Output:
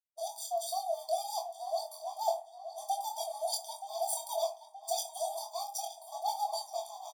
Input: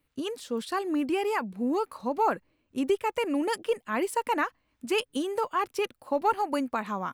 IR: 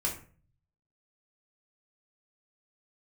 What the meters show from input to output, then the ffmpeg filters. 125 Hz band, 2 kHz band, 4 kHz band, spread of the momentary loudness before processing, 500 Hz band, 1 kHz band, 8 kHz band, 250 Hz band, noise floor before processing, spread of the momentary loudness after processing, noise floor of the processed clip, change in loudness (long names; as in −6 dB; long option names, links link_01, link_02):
can't be measured, below −35 dB, −1.5 dB, 6 LU, −7.0 dB, −5.5 dB, +6.5 dB, below −40 dB, −75 dBFS, 7 LU, −55 dBFS, −7.0 dB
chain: -filter_complex "[0:a]agate=range=-33dB:threshold=-55dB:ratio=3:detection=peak,bass=frequency=250:gain=15,treble=frequency=4000:gain=3,aeval=exprs='max(val(0),0)':channel_layout=same,asuperstop=centerf=1700:order=8:qfactor=0.51,asplit=2[link_01][link_02];[link_02]adelay=24,volume=-4.5dB[link_03];[link_01][link_03]amix=inputs=2:normalize=0,asplit=2[link_04][link_05];[link_05]adelay=924,lowpass=frequency=3600:poles=1,volume=-10.5dB,asplit=2[link_06][link_07];[link_07]adelay=924,lowpass=frequency=3600:poles=1,volume=0.54,asplit=2[link_08][link_09];[link_09]adelay=924,lowpass=frequency=3600:poles=1,volume=0.54,asplit=2[link_10][link_11];[link_11]adelay=924,lowpass=frequency=3600:poles=1,volume=0.54,asplit=2[link_12][link_13];[link_13]adelay=924,lowpass=frequency=3600:poles=1,volume=0.54,asplit=2[link_14][link_15];[link_15]adelay=924,lowpass=frequency=3600:poles=1,volume=0.54[link_16];[link_04][link_06][link_08][link_10][link_12][link_14][link_16]amix=inputs=7:normalize=0,asplit=2[link_17][link_18];[1:a]atrim=start_sample=2205,asetrate=48510,aresample=44100[link_19];[link_18][link_19]afir=irnorm=-1:irlink=0,volume=-4dB[link_20];[link_17][link_20]amix=inputs=2:normalize=0,afftfilt=real='re*eq(mod(floor(b*sr/1024/630),2),1)':imag='im*eq(mod(floor(b*sr/1024/630),2),1)':win_size=1024:overlap=0.75,volume=5dB"